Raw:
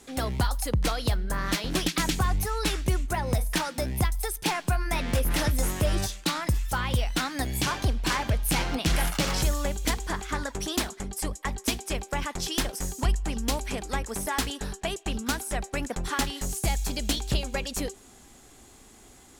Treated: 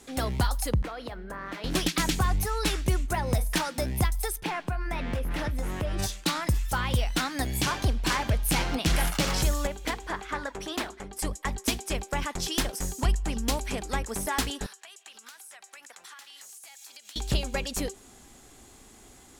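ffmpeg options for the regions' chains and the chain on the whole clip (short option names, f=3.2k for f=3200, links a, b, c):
-filter_complex "[0:a]asettb=1/sr,asplit=3[a][b][c];[a]atrim=end=0.824[d];[b]atrim=start=0.82:end=1.64,asetpts=PTS-STARTPTS,afade=t=in:d=0.004:c=qsin,afade=t=out:st=0.816:d=0.004:c=qsin,acrossover=split=200 2500:gain=0.2 1 0.178[e][f][g];[e][f][g]amix=inputs=3:normalize=0,acompressor=threshold=-33dB:ratio=4:attack=3.2:release=140:knee=1:detection=peak[h];[c]atrim=start=1.636[i];[d][h]acrossfade=d=0.004:c1=hsin:c2=qsin[j];[j][i]acrossfade=d=0.004:c1=qsin:c2=hsin,asettb=1/sr,asplit=3[k][l][m];[k]atrim=end=4.404[n];[l]atrim=start=4.4:end=5.99,asetpts=PTS-STARTPTS,afade=t=in:d=0.004:c=qsin,afade=t=out:st=1.586:d=0.004:c=qsin,bass=f=250:g=0,treble=f=4k:g=-12,acompressor=threshold=-27dB:ratio=3:attack=3.2:release=140:knee=1:detection=peak[o];[m]atrim=start=5.986[p];[n][o]acrossfade=d=0.004:c1=hsin:c2=qsin[q];[q][p]acrossfade=d=0.004:c1=qsin:c2=hsin,asettb=1/sr,asplit=3[r][s][t];[r]atrim=end=9.674[u];[s]atrim=start=9.67:end=11.19,asetpts=PTS-STARTPTS,afade=t=in:d=0.004:c=qsin,afade=t=out:st=1.516:d=0.004:c=qsin,bass=f=250:g=-9,treble=f=4k:g=-10,bandreject=f=60:t=h:w=6,bandreject=f=120:t=h:w=6,bandreject=f=180:t=h:w=6,bandreject=f=240:t=h:w=6,bandreject=f=300:t=h:w=6,bandreject=f=360:t=h:w=6[v];[t]atrim=start=11.186[w];[u][v]acrossfade=d=0.004:c1=hsin:c2=qsin[x];[x][w]acrossfade=d=0.004:c1=qsin:c2=hsin,asettb=1/sr,asplit=3[y][z][aa];[y]atrim=end=14.664[ab];[z]atrim=start=14.66:end=17.16,asetpts=PTS-STARTPTS,afade=t=in:d=0.004:c=qsin,afade=t=out:st=2.496:d=0.004:c=qsin,highpass=1.2k,acompressor=threshold=-43dB:ratio=16:attack=3.2:release=140:knee=1:detection=peak[ac];[aa]atrim=start=17.156[ad];[ab][ac]acrossfade=d=0.004:c1=hsin:c2=qsin[ae];[ae][ad]acrossfade=d=0.004:c1=qsin:c2=hsin"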